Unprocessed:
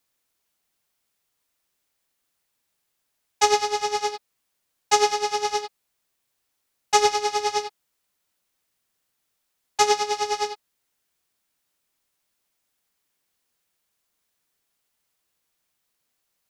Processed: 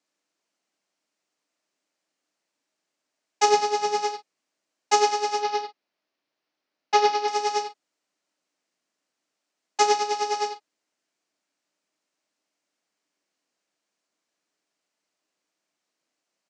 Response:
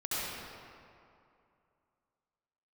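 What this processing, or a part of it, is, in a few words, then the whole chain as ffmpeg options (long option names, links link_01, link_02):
television speaker: -filter_complex "[0:a]highpass=frequency=170:width=0.5412,highpass=frequency=170:width=1.3066,equalizer=frequency=300:width_type=q:width=4:gain=8,equalizer=frequency=620:width_type=q:width=4:gain=6,equalizer=frequency=3500:width_type=q:width=4:gain=-4,lowpass=frequency=7400:width=0.5412,lowpass=frequency=7400:width=1.3066,asettb=1/sr,asplit=3[link_01][link_02][link_03];[link_01]atrim=end=3.484[link_04];[link_02]atrim=start=3.48:end=4.01,asetpts=PTS-STARTPTS,afade=type=in:duration=0.004:curve=qsin,afade=type=out:start_time=0.526:duration=0.004:curve=qsin,lowshelf=frequency=240:gain=10[link_05];[link_03]atrim=start=4.006[link_06];[link_04][link_05]acrossfade=duration=0.004:curve1=hsin:curve2=qsin[link_07];[link_07][link_06]acrossfade=duration=0.004:curve1=qsin:curve2=hsin,asettb=1/sr,asplit=3[link_08][link_09][link_10];[link_08]atrim=end=5.394[link_11];[link_09]atrim=start=5.39:end=7.28,asetpts=PTS-STARTPTS,afade=type=in:duration=0.004:curve=qsin,afade=type=out:start_time=1.886:duration=0.004:curve=qsin,lowpass=frequency=5100:width=0.5412,lowpass=frequency=5100:width=1.3066[link_12];[link_10]atrim=start=7.276[link_13];[link_11][link_12]acrossfade=duration=0.004:curve1=hsin:curve2=qsin[link_14];[link_14][link_13]acrossfade=duration=0.004:curve1=qsin:curve2=hsin,aecho=1:1:35|46:0.224|0.158,volume=-2dB"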